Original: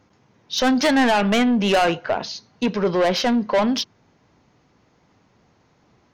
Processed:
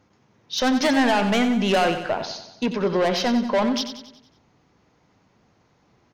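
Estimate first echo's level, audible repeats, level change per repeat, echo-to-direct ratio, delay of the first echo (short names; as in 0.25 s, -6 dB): -9.5 dB, 5, -6.0 dB, -8.5 dB, 92 ms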